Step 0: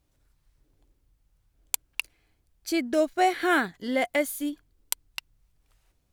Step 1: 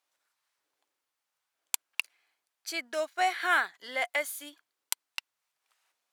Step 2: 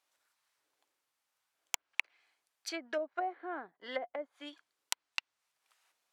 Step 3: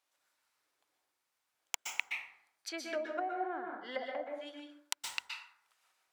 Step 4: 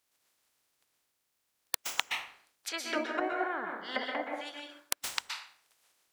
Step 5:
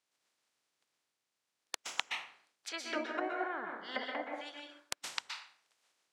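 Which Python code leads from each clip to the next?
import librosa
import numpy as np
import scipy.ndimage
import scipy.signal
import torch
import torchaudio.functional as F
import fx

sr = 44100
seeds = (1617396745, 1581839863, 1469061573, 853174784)

y1 = scipy.signal.sosfilt(scipy.signal.cheby1(2, 1.0, 1000.0, 'highpass', fs=sr, output='sos'), x)
y1 = fx.high_shelf(y1, sr, hz=11000.0, db=-5.5)
y2 = fx.env_lowpass_down(y1, sr, base_hz=430.0, full_db=-28.5)
y2 = 10.0 ** (-12.0 / 20.0) * (np.abs((y2 / 10.0 ** (-12.0 / 20.0) + 3.0) % 4.0 - 2.0) - 1.0)
y2 = F.gain(torch.from_numpy(y2), 1.0).numpy()
y3 = fx.rev_plate(y2, sr, seeds[0], rt60_s=0.68, hf_ratio=0.55, predelay_ms=110, drr_db=1.0)
y3 = F.gain(torch.from_numpy(y3), -2.0).numpy()
y4 = fx.spec_clip(y3, sr, under_db=17)
y4 = F.gain(torch.from_numpy(y4), 4.5).numpy()
y5 = fx.bandpass_edges(y4, sr, low_hz=130.0, high_hz=7700.0)
y5 = F.gain(torch.from_numpy(y5), -4.0).numpy()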